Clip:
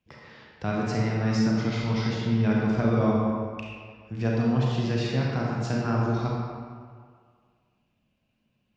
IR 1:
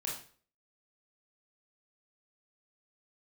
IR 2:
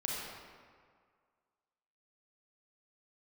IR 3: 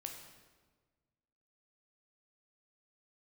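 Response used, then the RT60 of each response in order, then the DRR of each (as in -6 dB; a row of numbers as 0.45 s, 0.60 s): 2; 0.45 s, 1.9 s, 1.4 s; -3.5 dB, -3.5 dB, 2.5 dB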